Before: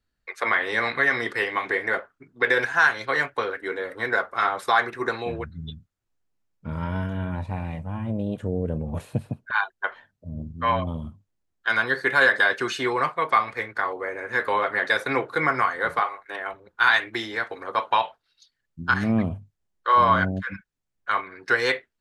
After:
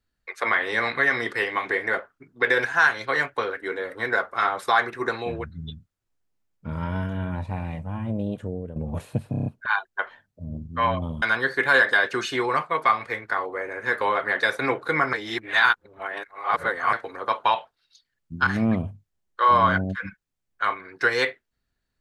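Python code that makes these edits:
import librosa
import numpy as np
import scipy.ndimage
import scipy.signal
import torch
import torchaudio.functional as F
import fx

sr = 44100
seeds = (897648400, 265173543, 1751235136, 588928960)

y = fx.edit(x, sr, fx.fade_out_to(start_s=8.26, length_s=0.5, floor_db=-12.5),
    fx.stutter(start_s=9.31, slice_s=0.03, count=6),
    fx.cut(start_s=11.07, length_s=0.62),
    fx.reverse_span(start_s=15.6, length_s=1.8), tone=tone)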